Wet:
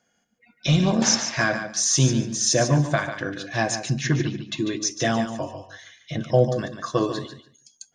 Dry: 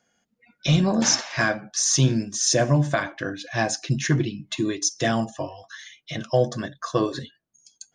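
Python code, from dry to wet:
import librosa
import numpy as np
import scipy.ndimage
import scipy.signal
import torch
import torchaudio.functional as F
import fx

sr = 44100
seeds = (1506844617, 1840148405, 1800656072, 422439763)

y = fx.cheby1_lowpass(x, sr, hz=5400.0, order=2, at=(3.84, 4.88))
y = fx.tilt_shelf(y, sr, db=4.5, hz=790.0, at=(5.53, 6.56))
y = fx.echo_feedback(y, sr, ms=145, feedback_pct=18, wet_db=-9.0)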